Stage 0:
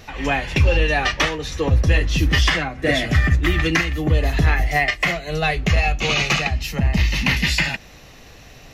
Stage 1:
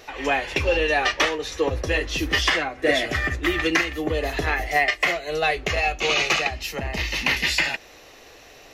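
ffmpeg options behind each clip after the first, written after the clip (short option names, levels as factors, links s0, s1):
-af "lowshelf=f=260:t=q:w=1.5:g=-11,volume=0.841"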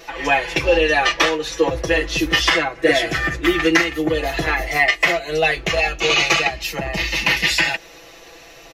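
-af "aecho=1:1:6:0.91,volume=1.26"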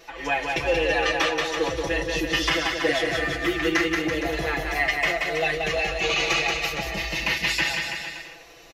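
-af "aecho=1:1:180|333|463|573.6|667.6:0.631|0.398|0.251|0.158|0.1,volume=0.398"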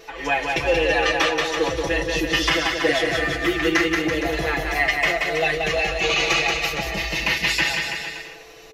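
-af "aeval=exprs='val(0)+0.00316*sin(2*PI*440*n/s)':c=same,volume=1.41"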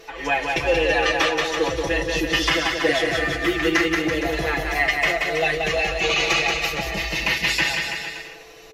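-ar 44100 -c:a aac -b:a 96k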